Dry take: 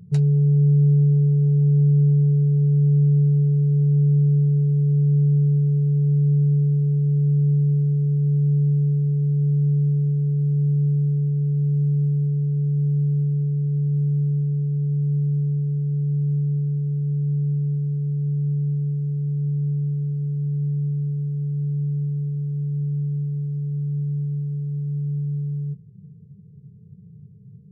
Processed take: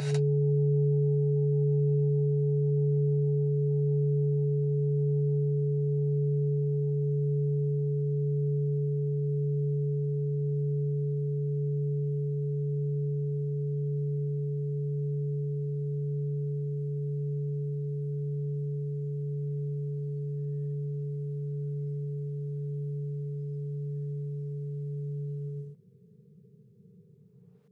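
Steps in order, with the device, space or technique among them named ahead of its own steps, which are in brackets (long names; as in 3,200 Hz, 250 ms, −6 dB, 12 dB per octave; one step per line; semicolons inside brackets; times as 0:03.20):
ghost voice (reversed playback; convolution reverb RT60 1.4 s, pre-delay 39 ms, DRR −5 dB; reversed playback; high-pass filter 440 Hz 12 dB per octave)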